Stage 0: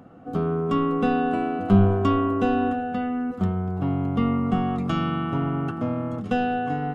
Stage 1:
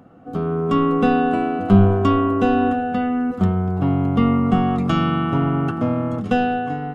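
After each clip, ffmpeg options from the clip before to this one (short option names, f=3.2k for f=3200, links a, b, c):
-af "dynaudnorm=f=130:g=9:m=6dB"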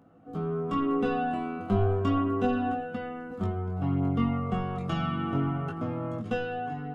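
-af "flanger=delay=18:depth=5.5:speed=0.32,volume=-7dB"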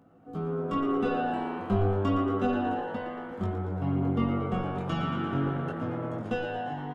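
-filter_complex "[0:a]asplit=9[a][b][c][d][e][f][g][h][i];[b]adelay=115,afreqshift=100,volume=-10.5dB[j];[c]adelay=230,afreqshift=200,volume=-14.4dB[k];[d]adelay=345,afreqshift=300,volume=-18.3dB[l];[e]adelay=460,afreqshift=400,volume=-22.1dB[m];[f]adelay=575,afreqshift=500,volume=-26dB[n];[g]adelay=690,afreqshift=600,volume=-29.9dB[o];[h]adelay=805,afreqshift=700,volume=-33.8dB[p];[i]adelay=920,afreqshift=800,volume=-37.6dB[q];[a][j][k][l][m][n][o][p][q]amix=inputs=9:normalize=0,volume=-1dB"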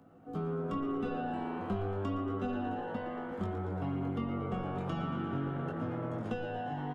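-filter_complex "[0:a]acrossover=split=210|1200[a][b][c];[a]acompressor=threshold=-38dB:ratio=4[d];[b]acompressor=threshold=-37dB:ratio=4[e];[c]acompressor=threshold=-50dB:ratio=4[f];[d][e][f]amix=inputs=3:normalize=0"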